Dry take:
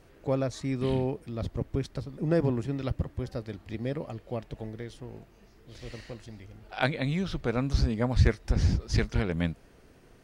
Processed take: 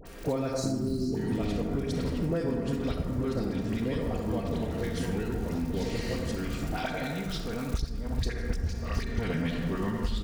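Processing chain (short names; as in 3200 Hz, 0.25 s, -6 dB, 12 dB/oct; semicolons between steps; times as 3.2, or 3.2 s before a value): tracing distortion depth 0.035 ms; echoes that change speed 0.292 s, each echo -4 st, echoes 3, each echo -6 dB; 0.47–1.12 spectral delete 400–3900 Hz; 6.77–9.18 level quantiser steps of 22 dB; crackle 94/s -43 dBFS; high shelf 3700 Hz +6 dB; comb 4.3 ms, depth 34%; reverb RT60 1.5 s, pre-delay 27 ms, DRR 2.5 dB; compressor 6:1, threshold -36 dBFS, peak gain reduction 17 dB; dispersion highs, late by 57 ms, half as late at 1400 Hz; gain +9 dB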